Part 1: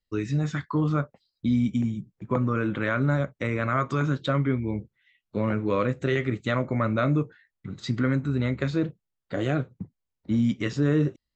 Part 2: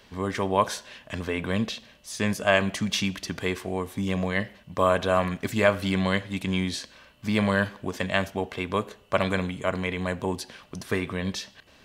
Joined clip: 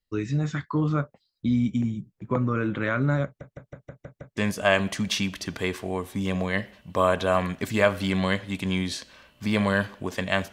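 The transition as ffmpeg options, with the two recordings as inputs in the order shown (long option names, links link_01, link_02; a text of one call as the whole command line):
ffmpeg -i cue0.wav -i cue1.wav -filter_complex "[0:a]apad=whole_dur=10.52,atrim=end=10.52,asplit=7[link_01][link_02][link_03][link_04][link_05][link_06][link_07];[link_01]atrim=end=3.412[link_08];[link_02]atrim=start=3.248:end=3.412[link_09];[link_03]atrim=start=3.248:end=3.412[link_10];[link_04]atrim=start=3.248:end=3.412[link_11];[link_05]atrim=start=3.248:end=3.412[link_12];[link_06]atrim=start=3.248:end=3.412[link_13];[link_07]atrim=start=3.248:end=3.412[link_14];[1:a]atrim=start=2.188:end=8.34[link_15];[link_08][link_09]acrossfade=duration=0.004:curve1=hsin:curve2=hsin[link_16];[link_16][link_10]acrossfade=duration=0.004:curve1=hsin:curve2=hsin[link_17];[link_17][link_11]acrossfade=duration=0.004:curve1=hsin:curve2=hsin[link_18];[link_18][link_12]acrossfade=duration=0.004:curve1=hsin:curve2=hsin[link_19];[link_19][link_13]acrossfade=duration=0.004:curve1=hsin:curve2=hsin[link_20];[link_20][link_14]acrossfade=duration=0.004:curve1=hsin:curve2=hsin[link_21];[link_21][link_15]acrossfade=duration=0.004:curve1=hsin:curve2=hsin" out.wav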